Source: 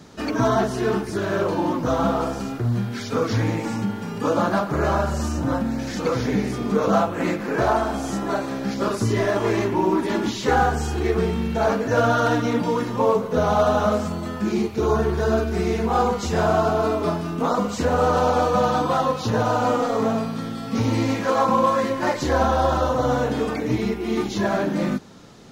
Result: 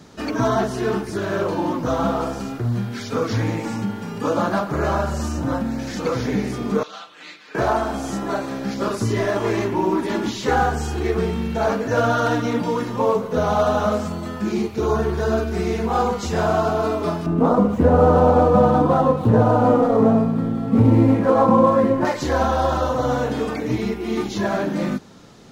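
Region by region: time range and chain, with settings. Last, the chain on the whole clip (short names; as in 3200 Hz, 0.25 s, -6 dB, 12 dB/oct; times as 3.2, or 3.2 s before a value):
6.83–7.55 band-pass 3700 Hz, Q 2.3 + comb 6.6 ms, depth 61%
17.26–22.05 median filter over 9 samples + tilt shelf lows +8.5 dB, about 1200 Hz
whole clip: dry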